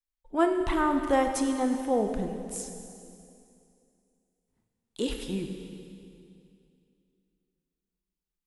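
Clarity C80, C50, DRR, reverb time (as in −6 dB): 6.5 dB, 6.0 dB, 4.5 dB, 2.6 s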